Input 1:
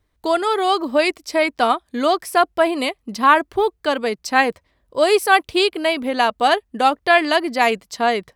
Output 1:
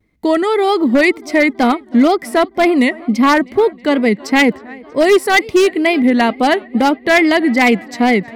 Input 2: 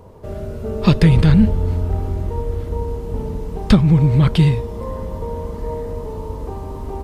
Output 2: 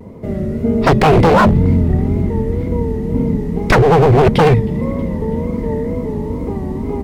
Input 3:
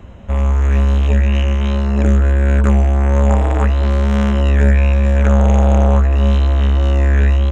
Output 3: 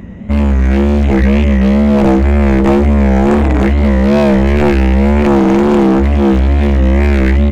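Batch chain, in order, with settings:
on a send: tape delay 322 ms, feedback 76%, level −23 dB, low-pass 5,600 Hz
on the sum: dynamic equaliser 130 Hz, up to +6 dB, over −31 dBFS, Q 3.2
hollow resonant body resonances 210/2,000 Hz, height 17 dB, ringing for 20 ms
in parallel at −11.5 dB: soft clipping −2 dBFS
on the sum: tape wow and flutter 88 cents
wave folding −1 dBFS
level −3 dB

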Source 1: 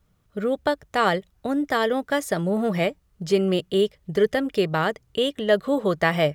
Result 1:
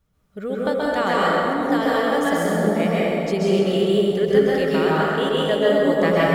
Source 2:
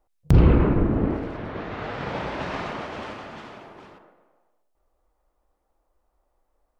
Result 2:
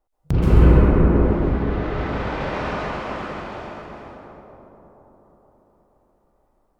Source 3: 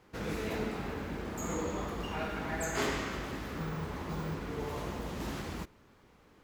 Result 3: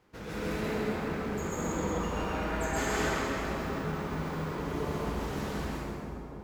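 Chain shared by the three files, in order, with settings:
echo with a time of its own for lows and highs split 930 Hz, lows 476 ms, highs 133 ms, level −8 dB
dense smooth reverb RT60 2.2 s, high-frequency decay 0.5×, pre-delay 115 ms, DRR −6.5 dB
level −4.5 dB

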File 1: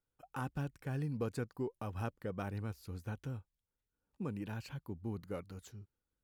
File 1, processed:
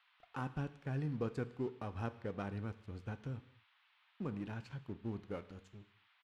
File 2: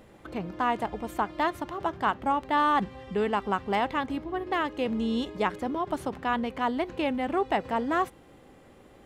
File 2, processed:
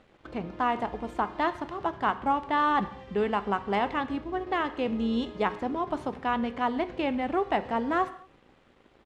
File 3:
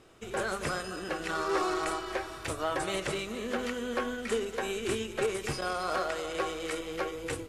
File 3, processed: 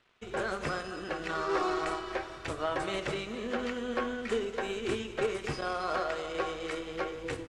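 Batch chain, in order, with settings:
dead-zone distortion −55 dBFS
noise in a band 880–3,600 Hz −72 dBFS
downsampling to 32,000 Hz
high-frequency loss of the air 82 metres
reverb whose tail is shaped and stops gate 260 ms falling, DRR 11.5 dB

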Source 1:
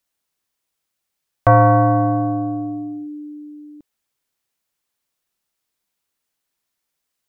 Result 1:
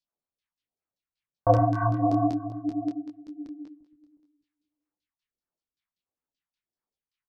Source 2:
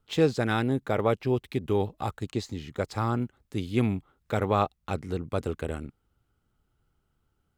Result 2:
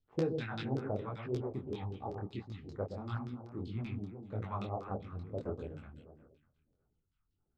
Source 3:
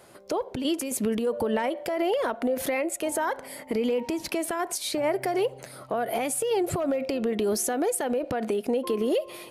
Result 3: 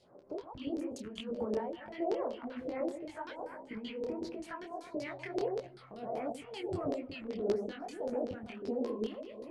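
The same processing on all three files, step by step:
delay that swaps between a low-pass and a high-pass 121 ms, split 1,000 Hz, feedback 58%, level −4.5 dB
all-pass phaser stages 2, 1.5 Hz, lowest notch 410–3,500 Hz
auto-filter low-pass saw down 5.2 Hz 390–5,100 Hz
micro pitch shift up and down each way 55 cents
level −7 dB

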